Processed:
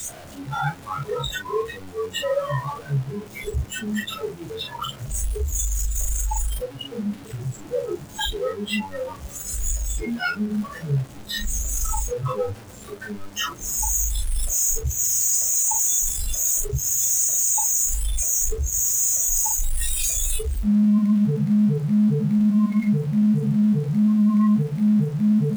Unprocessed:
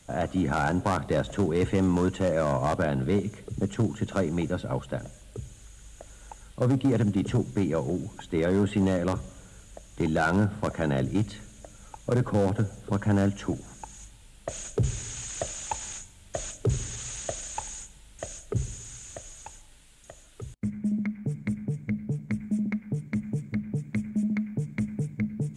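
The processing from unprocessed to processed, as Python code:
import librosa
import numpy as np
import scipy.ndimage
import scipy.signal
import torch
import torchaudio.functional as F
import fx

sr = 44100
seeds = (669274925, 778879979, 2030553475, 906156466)

y = np.sign(x) * np.sqrt(np.mean(np.square(x)))
y = fx.room_early_taps(y, sr, ms=(14, 43), db=(-8.0, -4.0))
y = fx.noise_reduce_blind(y, sr, reduce_db=22)
y = F.gain(torch.from_numpy(y), 8.0).numpy()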